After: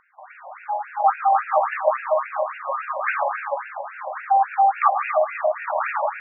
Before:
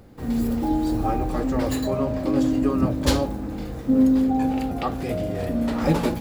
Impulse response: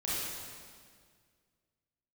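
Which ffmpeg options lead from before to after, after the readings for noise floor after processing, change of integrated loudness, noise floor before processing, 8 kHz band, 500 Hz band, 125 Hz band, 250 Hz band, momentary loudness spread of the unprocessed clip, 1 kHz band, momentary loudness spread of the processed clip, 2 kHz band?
-44 dBFS, +1.0 dB, -33 dBFS, under -40 dB, +2.5 dB, under -40 dB, under -40 dB, 8 LU, +11.5 dB, 12 LU, +10.0 dB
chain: -filter_complex "[0:a]asplit=2[s0][s1];[1:a]atrim=start_sample=2205,adelay=116[s2];[s1][s2]afir=irnorm=-1:irlink=0,volume=0.398[s3];[s0][s3]amix=inputs=2:normalize=0,acontrast=29,highpass=470,lowpass=2900,dynaudnorm=f=520:g=3:m=7.08,afftfilt=real='re*between(b*sr/1024,760*pow(2000/760,0.5+0.5*sin(2*PI*3.6*pts/sr))/1.41,760*pow(2000/760,0.5+0.5*sin(2*PI*3.6*pts/sr))*1.41)':imag='im*between(b*sr/1024,760*pow(2000/760,0.5+0.5*sin(2*PI*3.6*pts/sr))/1.41,760*pow(2000/760,0.5+0.5*sin(2*PI*3.6*pts/sr))*1.41)':win_size=1024:overlap=0.75"

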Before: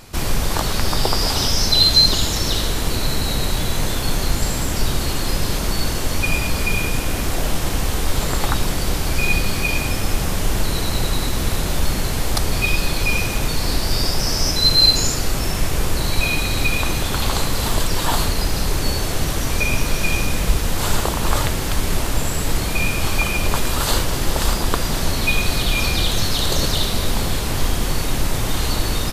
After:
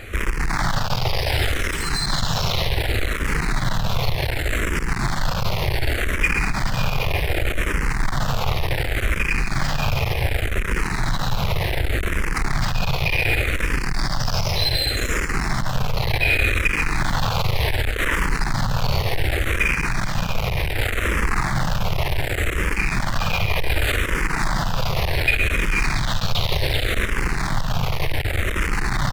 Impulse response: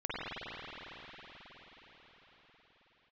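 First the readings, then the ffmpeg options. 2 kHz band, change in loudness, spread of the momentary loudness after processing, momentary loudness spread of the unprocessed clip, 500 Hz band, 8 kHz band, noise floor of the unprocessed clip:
+2.5 dB, -2.5 dB, 4 LU, 4 LU, -2.0 dB, -9.5 dB, -23 dBFS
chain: -filter_complex "[0:a]acompressor=threshold=0.158:ratio=6,asplit=2[s0][s1];[1:a]atrim=start_sample=2205,adelay=52[s2];[s1][s2]afir=irnorm=-1:irlink=0,volume=0.126[s3];[s0][s3]amix=inputs=2:normalize=0,acontrast=66,highshelf=f=3100:g=-8.5,asplit=2[s4][s5];[s5]acrusher=samples=13:mix=1:aa=0.000001:lfo=1:lforange=13:lforate=1.1,volume=0.251[s6];[s4][s6]amix=inputs=2:normalize=0,asoftclip=type=hard:threshold=0.126,equalizer=f=125:t=o:w=1:g=4,equalizer=f=250:t=o:w=1:g=-7,equalizer=f=2000:t=o:w=1:g=9,equalizer=f=8000:t=o:w=1:g=-3,aecho=1:1:137:0.376,asplit=2[s7][s8];[s8]afreqshift=-0.67[s9];[s7][s9]amix=inputs=2:normalize=1,volume=1.19"

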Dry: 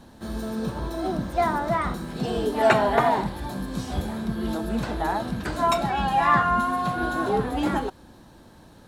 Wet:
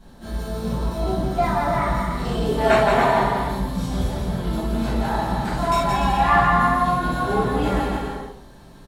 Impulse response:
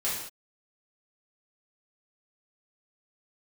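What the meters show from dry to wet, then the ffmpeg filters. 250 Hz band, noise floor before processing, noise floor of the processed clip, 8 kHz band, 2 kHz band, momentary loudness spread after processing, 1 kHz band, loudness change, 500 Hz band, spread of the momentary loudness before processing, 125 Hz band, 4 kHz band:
+2.5 dB, -50 dBFS, -45 dBFS, +3.0 dB, +3.5 dB, 10 LU, +3.5 dB, +3.5 dB, +3.0 dB, 11 LU, +6.5 dB, +3.0 dB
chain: -filter_complex "[0:a]lowshelf=f=90:g=9,aecho=1:1:170|289|372.3|430.6|471.4:0.631|0.398|0.251|0.158|0.1[s0];[1:a]atrim=start_sample=2205,atrim=end_sample=4410[s1];[s0][s1]afir=irnorm=-1:irlink=0,volume=0.531"

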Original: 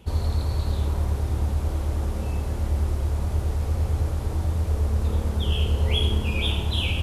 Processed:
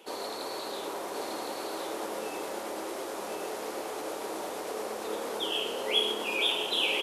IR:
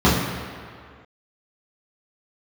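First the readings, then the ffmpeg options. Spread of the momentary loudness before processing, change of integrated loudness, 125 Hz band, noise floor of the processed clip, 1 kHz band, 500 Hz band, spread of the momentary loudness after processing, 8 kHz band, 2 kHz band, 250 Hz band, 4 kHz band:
4 LU, -7.0 dB, under -35 dB, -38 dBFS, +3.0 dB, +2.0 dB, 10 LU, +3.0 dB, +1.5 dB, -7.0 dB, +1.5 dB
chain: -filter_complex "[0:a]aecho=1:1:1064:0.596,asplit=2[s0][s1];[s1]alimiter=limit=0.133:level=0:latency=1,volume=0.891[s2];[s0][s2]amix=inputs=2:normalize=0,highpass=f=350:w=0.5412,highpass=f=350:w=1.3066,volume=0.708"

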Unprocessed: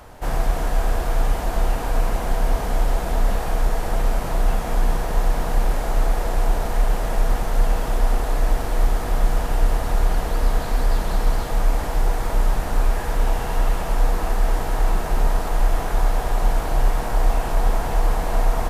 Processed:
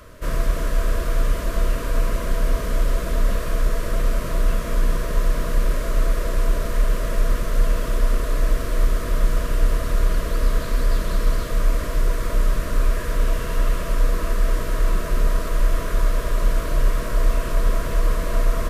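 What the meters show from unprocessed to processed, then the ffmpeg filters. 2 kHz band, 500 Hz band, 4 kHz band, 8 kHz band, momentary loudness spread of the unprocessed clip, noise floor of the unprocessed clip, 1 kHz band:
0.0 dB, -1.0 dB, 0.0 dB, 0.0 dB, 1 LU, -26 dBFS, -5.5 dB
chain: -af "asuperstop=centerf=810:order=8:qfactor=2.7"

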